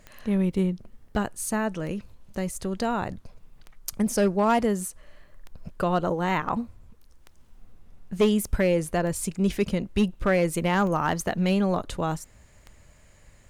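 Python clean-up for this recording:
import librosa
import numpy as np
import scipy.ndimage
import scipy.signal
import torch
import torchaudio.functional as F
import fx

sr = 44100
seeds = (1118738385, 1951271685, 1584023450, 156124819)

y = fx.fix_declip(x, sr, threshold_db=-14.5)
y = fx.fix_declick_ar(y, sr, threshold=10.0)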